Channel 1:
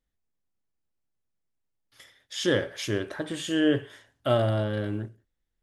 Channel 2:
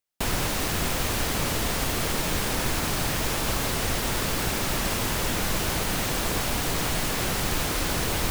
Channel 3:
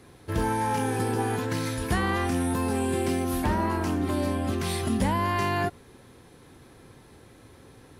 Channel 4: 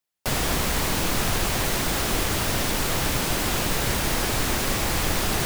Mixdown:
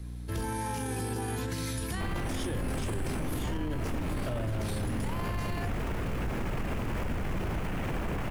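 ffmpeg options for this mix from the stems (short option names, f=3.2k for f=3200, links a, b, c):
-filter_complex "[0:a]aeval=exprs='val(0)+0.00891*(sin(2*PI*60*n/s)+sin(2*PI*2*60*n/s)/2+sin(2*PI*3*60*n/s)/3+sin(2*PI*4*60*n/s)/4+sin(2*PI*5*60*n/s)/5)':c=same,asoftclip=type=tanh:threshold=-17dB,volume=-3.5dB[a];[1:a]afwtdn=0.0282,adelay=1800,volume=-3.5dB[b];[2:a]highshelf=f=2.3k:g=10.5,volume=-9dB[c];[3:a]tiltshelf=f=970:g=8.5,flanger=delay=15.5:depth=5:speed=2.4,adelay=2200,volume=-14dB[d];[a][b][c][d]amix=inputs=4:normalize=0,lowshelf=f=330:g=7,acrossover=split=210[e][f];[f]acompressor=threshold=-26dB:ratio=6[g];[e][g]amix=inputs=2:normalize=0,alimiter=level_in=1dB:limit=-24dB:level=0:latency=1:release=14,volume=-1dB"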